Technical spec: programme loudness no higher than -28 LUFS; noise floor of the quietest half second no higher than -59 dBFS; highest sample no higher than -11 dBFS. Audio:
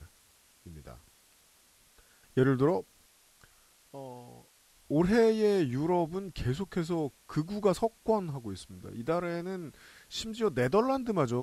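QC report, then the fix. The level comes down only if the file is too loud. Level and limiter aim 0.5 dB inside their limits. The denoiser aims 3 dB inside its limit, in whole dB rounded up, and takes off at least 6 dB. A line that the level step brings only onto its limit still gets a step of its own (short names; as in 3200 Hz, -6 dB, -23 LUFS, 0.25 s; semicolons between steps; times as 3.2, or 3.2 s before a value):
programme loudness -30.0 LUFS: OK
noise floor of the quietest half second -63 dBFS: OK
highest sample -13.5 dBFS: OK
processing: none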